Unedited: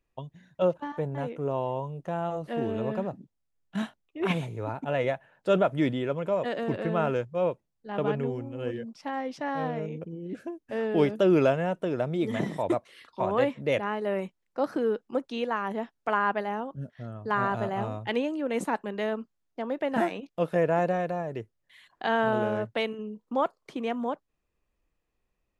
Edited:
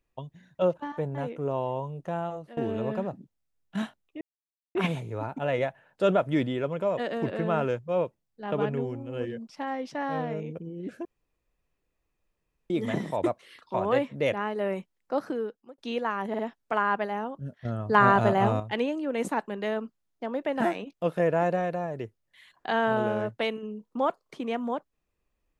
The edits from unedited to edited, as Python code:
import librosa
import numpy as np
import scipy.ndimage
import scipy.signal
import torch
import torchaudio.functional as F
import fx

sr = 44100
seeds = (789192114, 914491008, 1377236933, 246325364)

y = fx.edit(x, sr, fx.fade_out_to(start_s=2.17, length_s=0.4, floor_db=-17.0),
    fx.insert_silence(at_s=4.21, length_s=0.54),
    fx.room_tone_fill(start_s=10.51, length_s=1.65),
    fx.fade_out_span(start_s=14.59, length_s=0.65),
    fx.stutter(start_s=15.75, slice_s=0.05, count=3),
    fx.clip_gain(start_s=17.01, length_s=0.95, db=7.5), tone=tone)